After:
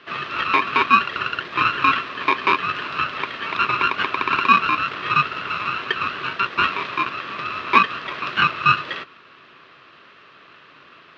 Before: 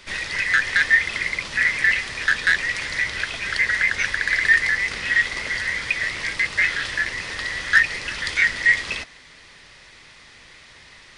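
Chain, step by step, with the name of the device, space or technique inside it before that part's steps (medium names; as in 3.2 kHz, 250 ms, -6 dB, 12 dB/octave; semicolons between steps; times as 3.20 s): ring modulator pedal into a guitar cabinet (polarity switched at an audio rate 680 Hz; cabinet simulation 110–3500 Hz, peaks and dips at 140 Hz +4 dB, 270 Hz +3 dB, 380 Hz +8 dB, 770 Hz -8 dB, 1.1 kHz +7 dB, 1.6 kHz +5 dB); trim -1.5 dB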